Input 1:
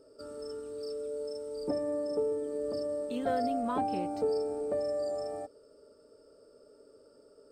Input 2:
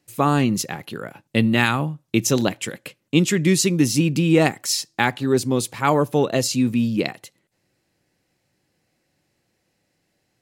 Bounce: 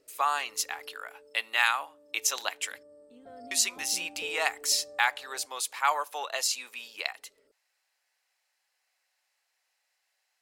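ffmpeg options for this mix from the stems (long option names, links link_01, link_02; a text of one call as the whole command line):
ffmpeg -i stem1.wav -i stem2.wav -filter_complex "[0:a]volume=-1dB,afade=type=out:start_time=0.84:duration=0.22:silence=0.354813,afade=type=in:start_time=3.28:duration=0.56:silence=0.334965[link_01];[1:a]highpass=frequency=810:width=0.5412,highpass=frequency=810:width=1.3066,volume=-3.5dB,asplit=3[link_02][link_03][link_04];[link_02]atrim=end=2.83,asetpts=PTS-STARTPTS,afade=type=out:start_time=2.826:duration=0.004:curve=hsin[link_05];[link_03]atrim=start=2.83:end=3.51,asetpts=PTS-STARTPTS,volume=0[link_06];[link_04]atrim=start=3.51,asetpts=PTS-STARTPTS,afade=type=in:duration=0.004:curve=hsin[link_07];[link_05][link_06][link_07]concat=n=3:v=0:a=1,asplit=2[link_08][link_09];[link_09]apad=whole_len=331351[link_10];[link_01][link_10]sidechaincompress=threshold=-29dB:ratio=8:attack=45:release=1040[link_11];[link_11][link_08]amix=inputs=2:normalize=0" out.wav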